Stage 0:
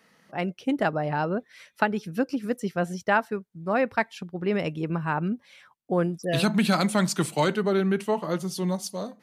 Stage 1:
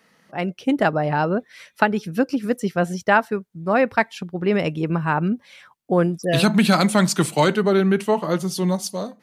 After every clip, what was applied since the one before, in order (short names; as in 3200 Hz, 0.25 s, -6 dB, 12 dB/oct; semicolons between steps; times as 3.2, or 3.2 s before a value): AGC gain up to 4 dB; gain +2 dB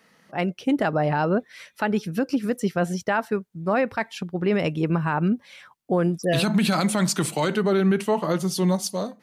limiter -13 dBFS, peak gain reduction 10 dB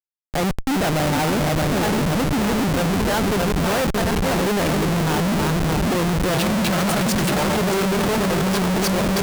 regenerating reverse delay 0.311 s, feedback 69%, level -5.5 dB; Schmitt trigger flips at -29 dBFS; gain +2.5 dB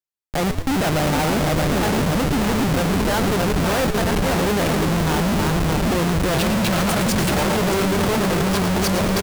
frequency-shifting echo 0.112 s, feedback 43%, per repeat -98 Hz, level -9.5 dB